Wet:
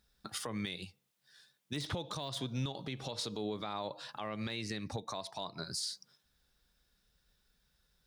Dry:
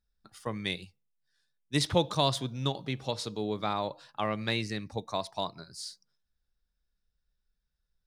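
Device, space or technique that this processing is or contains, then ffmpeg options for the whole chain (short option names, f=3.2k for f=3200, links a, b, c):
broadcast voice chain: -af "highpass=f=110:p=1,deesser=0.75,acompressor=threshold=-47dB:ratio=4,equalizer=f=3.5k:t=o:w=0.51:g=3,alimiter=level_in=17dB:limit=-24dB:level=0:latency=1:release=89,volume=-17dB,volume=13.5dB"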